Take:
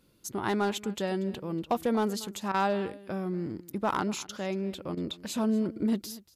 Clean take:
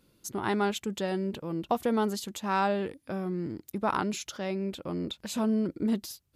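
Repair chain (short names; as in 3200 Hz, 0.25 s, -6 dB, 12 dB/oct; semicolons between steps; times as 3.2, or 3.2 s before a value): clip repair -19 dBFS; interpolate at 2.52/4.27/4.95, 20 ms; inverse comb 0.237 s -19.5 dB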